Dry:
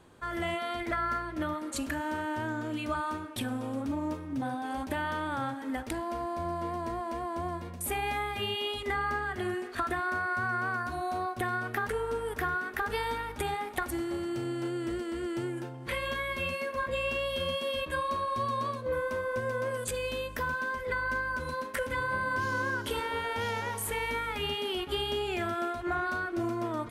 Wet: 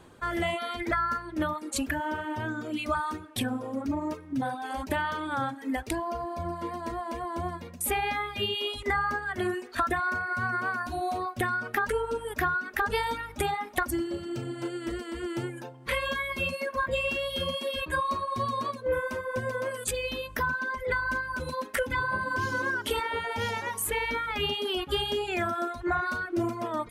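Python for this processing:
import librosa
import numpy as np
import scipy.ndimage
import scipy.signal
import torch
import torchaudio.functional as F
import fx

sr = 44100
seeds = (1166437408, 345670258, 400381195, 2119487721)

y = fx.dereverb_blind(x, sr, rt60_s=2.0)
y = y * librosa.db_to_amplitude(5.0)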